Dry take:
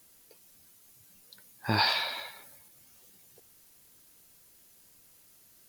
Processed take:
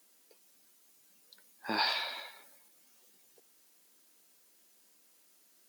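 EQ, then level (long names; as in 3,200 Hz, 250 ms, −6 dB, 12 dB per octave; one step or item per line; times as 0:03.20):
high-pass filter 220 Hz 24 dB per octave
parametric band 12,000 Hz −8 dB 0.26 octaves
−4.5 dB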